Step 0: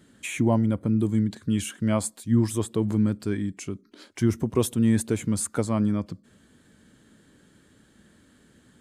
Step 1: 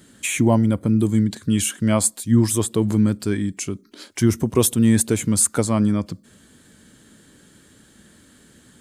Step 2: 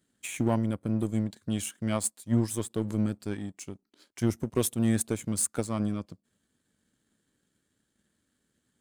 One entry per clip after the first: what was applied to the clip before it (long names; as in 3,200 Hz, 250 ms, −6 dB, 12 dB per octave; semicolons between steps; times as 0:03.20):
high-shelf EQ 4,100 Hz +8.5 dB; level +5 dB
power curve on the samples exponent 1.4; level −7.5 dB